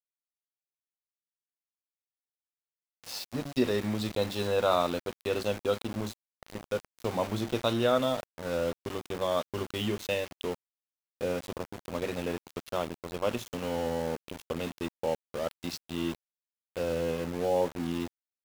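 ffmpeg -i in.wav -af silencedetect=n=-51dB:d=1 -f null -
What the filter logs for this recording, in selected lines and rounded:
silence_start: 0.00
silence_end: 3.04 | silence_duration: 3.04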